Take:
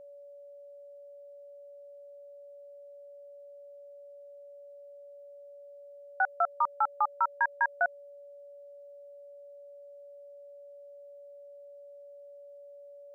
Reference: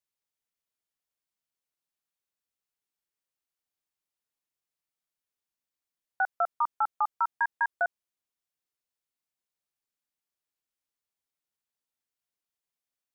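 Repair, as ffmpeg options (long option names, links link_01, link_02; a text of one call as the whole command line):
ffmpeg -i in.wav -af "bandreject=frequency=570:width=30" out.wav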